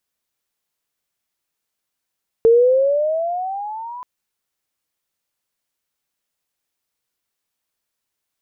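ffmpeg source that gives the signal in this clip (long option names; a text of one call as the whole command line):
ffmpeg -f lavfi -i "aevalsrc='pow(10,(-7.5-22*t/1.58)/20)*sin(2*PI*449*1.58/(14*log(2)/12)*(exp(14*log(2)/12*t/1.58)-1))':duration=1.58:sample_rate=44100" out.wav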